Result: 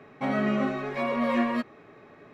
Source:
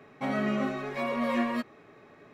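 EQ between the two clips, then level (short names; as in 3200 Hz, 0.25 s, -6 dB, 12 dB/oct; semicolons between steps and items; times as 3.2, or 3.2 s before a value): high shelf 6100 Hz -9.5 dB; +3.0 dB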